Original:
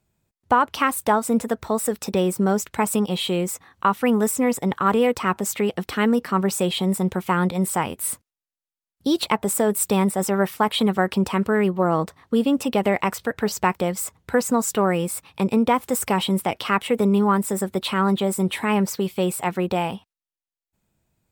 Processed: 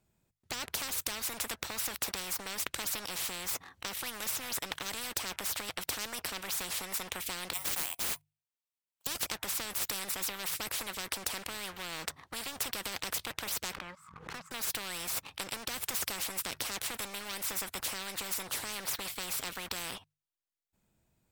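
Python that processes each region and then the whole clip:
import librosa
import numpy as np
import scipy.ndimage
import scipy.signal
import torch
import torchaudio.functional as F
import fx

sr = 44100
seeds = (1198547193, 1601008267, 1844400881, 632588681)

y = fx.chain(x, sr, fx.cheby_ripple_highpass(hz=680.0, ripple_db=9),
    fx.resample_bad(factor=4, down='none', up='zero_stuff'), at=(7.53, 9.07))
y = fx.chain(y, sr, fx.double_bandpass(hz=440.0, octaves=2.9),
    fx.peak_eq(hz=640.0, db=-13.0, octaves=0.52),
    fx.pre_swell(db_per_s=64.0), at=(13.73, 14.51))
y = fx.hum_notches(y, sr, base_hz=50, count=3)
y = fx.leveller(y, sr, passes=2)
y = fx.spectral_comp(y, sr, ratio=10.0)
y = F.gain(torch.from_numpy(y), -8.0).numpy()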